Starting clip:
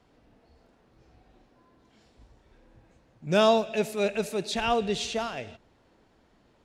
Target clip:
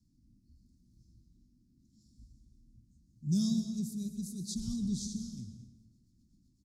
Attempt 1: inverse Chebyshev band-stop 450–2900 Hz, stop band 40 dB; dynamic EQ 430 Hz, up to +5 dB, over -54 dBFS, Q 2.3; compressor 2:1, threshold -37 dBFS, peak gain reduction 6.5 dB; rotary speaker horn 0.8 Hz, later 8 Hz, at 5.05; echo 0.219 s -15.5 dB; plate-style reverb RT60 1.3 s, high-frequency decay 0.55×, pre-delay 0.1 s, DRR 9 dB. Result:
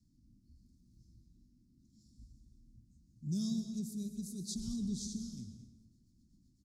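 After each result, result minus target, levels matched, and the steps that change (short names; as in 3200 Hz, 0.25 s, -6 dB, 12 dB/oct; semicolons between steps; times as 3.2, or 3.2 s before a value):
compressor: peak gain reduction +6.5 dB; 500 Hz band +4.5 dB
remove: compressor 2:1, threshold -37 dBFS, peak gain reduction 6.5 dB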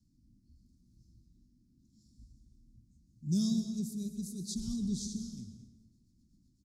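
500 Hz band +4.0 dB
change: dynamic EQ 120 Hz, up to +5 dB, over -54 dBFS, Q 2.3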